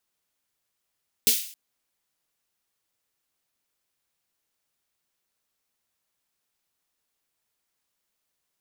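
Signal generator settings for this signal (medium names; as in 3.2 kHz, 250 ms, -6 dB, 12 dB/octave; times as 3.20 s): snare drum length 0.27 s, tones 240 Hz, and 430 Hz, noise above 2.6 kHz, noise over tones 12 dB, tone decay 0.16 s, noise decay 0.50 s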